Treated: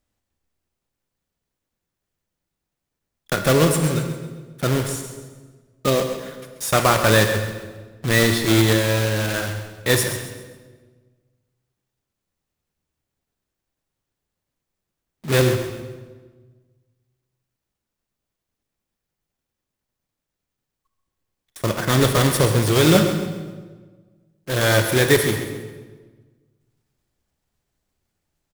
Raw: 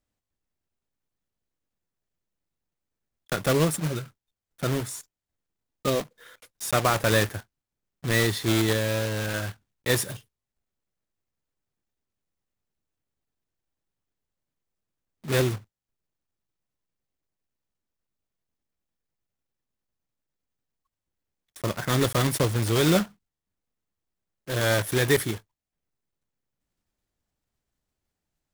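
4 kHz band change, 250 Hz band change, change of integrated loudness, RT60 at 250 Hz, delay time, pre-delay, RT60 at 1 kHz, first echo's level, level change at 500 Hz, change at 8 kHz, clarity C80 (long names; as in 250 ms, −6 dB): +6.5 dB, +6.5 dB, +6.0 dB, 1.7 s, 134 ms, 31 ms, 1.3 s, −11.0 dB, +6.5 dB, +6.5 dB, 7.0 dB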